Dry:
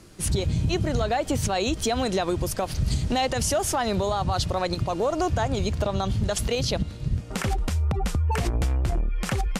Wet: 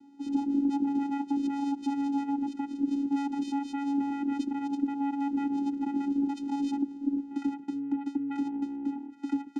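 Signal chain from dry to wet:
low-shelf EQ 490 Hz +8 dB
channel vocoder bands 4, square 280 Hz
level −8 dB

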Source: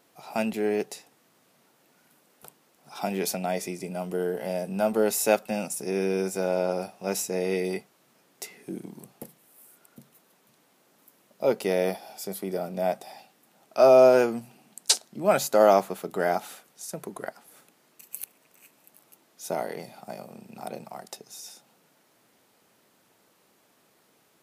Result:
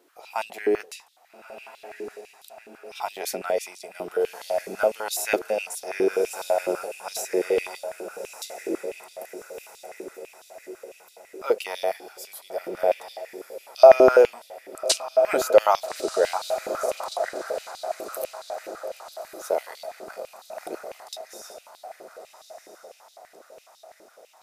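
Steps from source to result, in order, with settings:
feedback delay with all-pass diffusion 1,277 ms, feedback 56%, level −10 dB
high-pass on a step sequencer 12 Hz 350–3,700 Hz
level −2 dB

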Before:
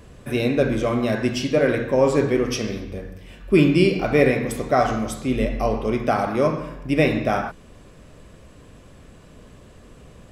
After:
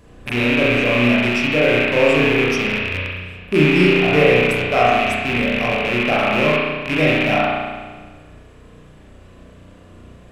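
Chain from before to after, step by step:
loose part that buzzes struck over −29 dBFS, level −9 dBFS
spring reverb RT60 1.4 s, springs 33 ms, chirp 35 ms, DRR −5.5 dB
level −3.5 dB

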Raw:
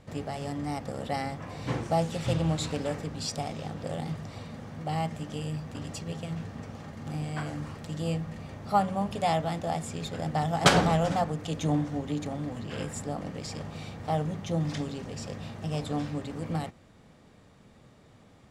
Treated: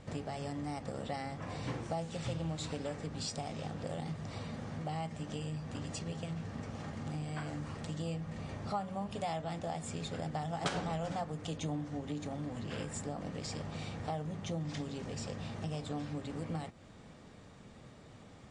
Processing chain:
downward compressor 3 to 1, threshold −40 dBFS, peak gain reduction 18.5 dB
level +2 dB
MP3 40 kbit/s 22,050 Hz

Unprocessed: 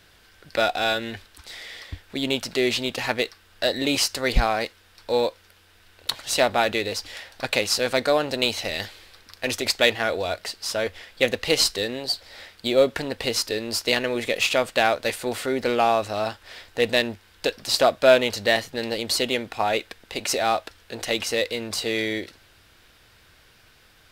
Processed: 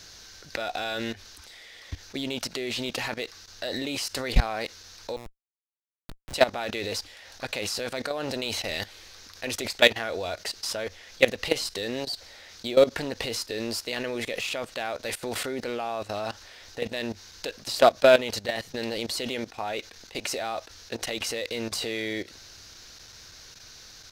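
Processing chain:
noise in a band 3,700–6,500 Hz −52 dBFS
output level in coarse steps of 17 dB
0:05.16–0:06.34: comparator with hysteresis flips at −26.5 dBFS
level +3 dB

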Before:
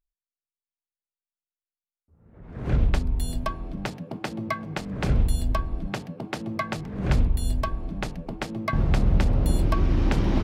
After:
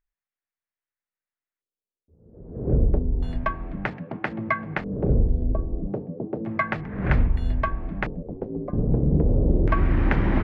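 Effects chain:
0:08.22–0:09.22: ring modulation 41 Hz → 120 Hz
auto-filter low-pass square 0.31 Hz 460–1,900 Hz
level +1 dB

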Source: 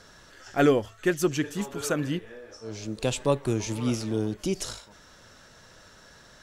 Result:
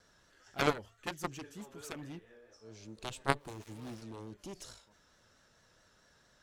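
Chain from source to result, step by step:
0:03.39–0:04.02: gap after every zero crossing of 0.18 ms
pitch vibrato 4.5 Hz 51 cents
harmonic generator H 3 −8 dB, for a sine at −8.5 dBFS

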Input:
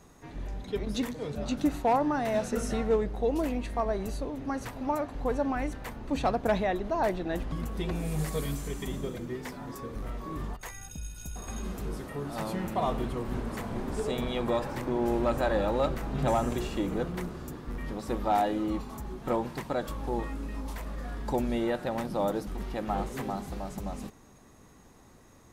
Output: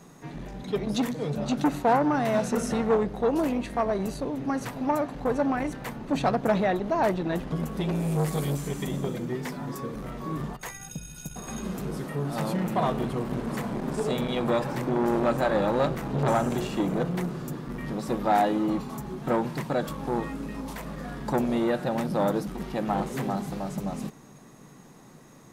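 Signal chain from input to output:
low shelf with overshoot 110 Hz −8.5 dB, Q 3
saturating transformer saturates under 700 Hz
level +4.5 dB

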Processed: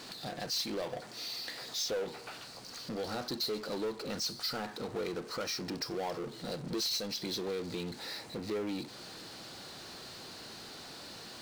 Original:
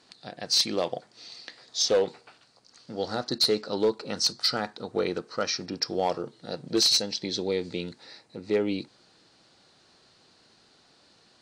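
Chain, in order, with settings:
downward compressor 2 to 1, threshold −39 dBFS, peak gain reduction 11 dB
power curve on the samples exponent 0.5
level −6 dB

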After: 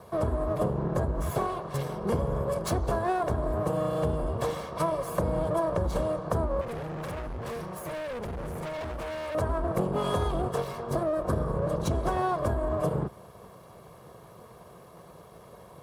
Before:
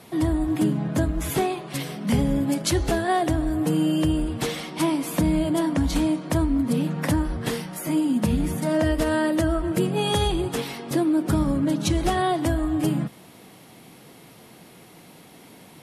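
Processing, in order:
lower of the sound and its delayed copy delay 1.8 ms
high-pass filter 43 Hz 24 dB per octave
high shelf with overshoot 1,600 Hz −10.5 dB, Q 1.5
downward compressor, threshold −25 dBFS, peak gain reduction 7 dB
0:06.61–0:09.35: hard clipping −35 dBFS, distortion −10 dB
level +1.5 dB

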